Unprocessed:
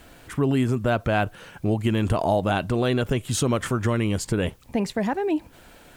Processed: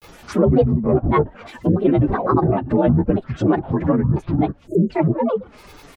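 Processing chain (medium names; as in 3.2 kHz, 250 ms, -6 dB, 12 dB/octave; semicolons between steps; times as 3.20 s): frequency axis rescaled in octaves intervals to 88%; low-pass that closes with the level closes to 810 Hz, closed at -23 dBFS; comb 4.6 ms, depth 63%; granulator, spray 21 ms, pitch spread up and down by 12 st; spectral selection erased 4.67–4.91 s, 640–6300 Hz; trim +8 dB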